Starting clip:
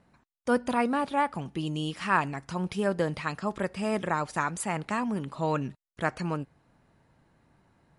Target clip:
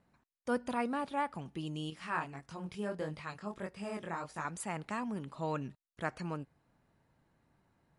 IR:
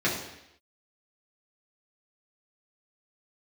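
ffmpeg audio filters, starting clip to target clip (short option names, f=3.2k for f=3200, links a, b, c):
-filter_complex "[0:a]asettb=1/sr,asplit=3[a][b][c];[a]atrim=end=1.904[d];[b]atrim=start=1.9:end=4.45,asetpts=PTS-STARTPTS,afade=t=in:d=0.004:c=qsin,afade=t=out:st=2.546:d=0.004:c=qsin,flanger=delay=19:depth=5.3:speed=1.6[e];[c]atrim=start=4.446[f];[d][e]acrossfade=d=0.004:c1=hsin:c2=qsin[g];[g][f]acrossfade=d=0.004:c1=qsin:c2=hsin,volume=-8dB"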